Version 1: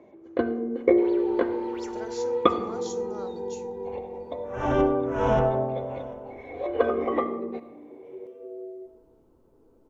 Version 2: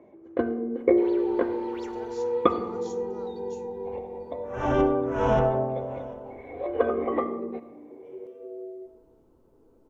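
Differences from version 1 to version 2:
speech −8.5 dB
first sound: add high-frequency loss of the air 310 metres

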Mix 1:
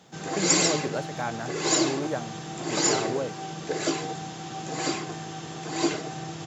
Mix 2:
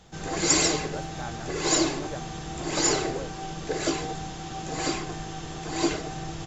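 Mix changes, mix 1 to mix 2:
speech −7.5 dB
master: remove high-pass filter 120 Hz 24 dB per octave

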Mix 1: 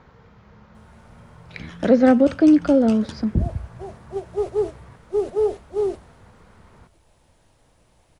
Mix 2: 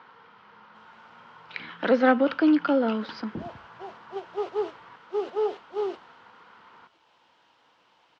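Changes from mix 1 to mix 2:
first sound: add high-frequency loss of the air 250 metres
master: add loudspeaker in its box 390–5,000 Hz, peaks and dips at 400 Hz −4 dB, 610 Hz −8 dB, 970 Hz +6 dB, 1,400 Hz +6 dB, 3,000 Hz +7 dB

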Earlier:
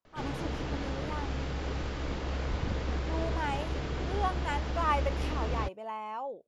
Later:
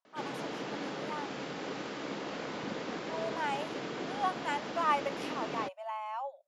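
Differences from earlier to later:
speech: add linear-phase brick-wall high-pass 540 Hz
background: add high-pass filter 190 Hz 24 dB per octave

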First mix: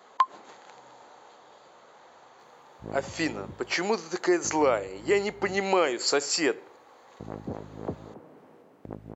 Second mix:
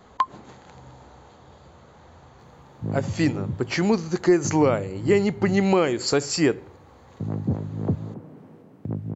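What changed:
background: add Bessel high-pass filter 180 Hz, order 8
master: remove high-pass filter 470 Hz 12 dB per octave

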